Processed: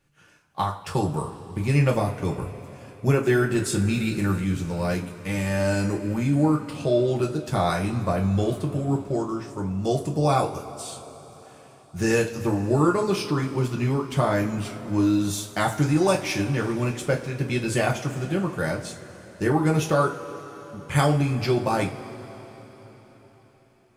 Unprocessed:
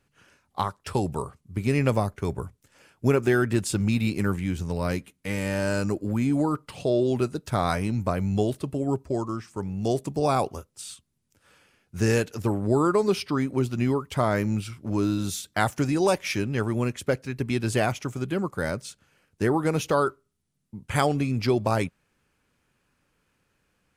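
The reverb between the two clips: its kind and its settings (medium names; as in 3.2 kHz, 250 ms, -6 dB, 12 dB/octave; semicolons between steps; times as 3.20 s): two-slope reverb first 0.26 s, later 4.4 s, from -21 dB, DRR -0.5 dB; trim -1.5 dB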